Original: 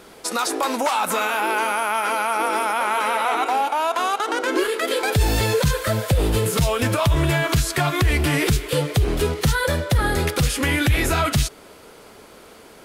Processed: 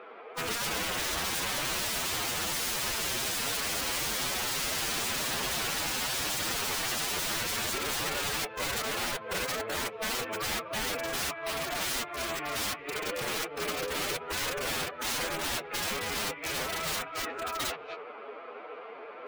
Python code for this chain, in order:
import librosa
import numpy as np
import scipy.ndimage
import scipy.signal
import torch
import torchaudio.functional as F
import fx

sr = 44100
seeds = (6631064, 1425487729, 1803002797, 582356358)

p1 = fx.over_compress(x, sr, threshold_db=-24.0, ratio=-0.5)
p2 = fx.cabinet(p1, sr, low_hz=390.0, low_slope=12, high_hz=2700.0, hz=(460.0, 710.0, 1200.0, 2400.0), db=(7, 6, 9, 5))
p3 = p2 + fx.echo_multitap(p2, sr, ms=(86, 145, 199, 479, 491), db=(-19.0, -18.5, -9.0, -4.0, -4.5), dry=0)
p4 = (np.mod(10.0 ** (18.5 / 20.0) * p3 + 1.0, 2.0) - 1.0) / 10.0 ** (18.5 / 20.0)
p5 = fx.stretch_vocoder(p4, sr, factor=1.5)
y = F.gain(torch.from_numpy(p5), -8.0).numpy()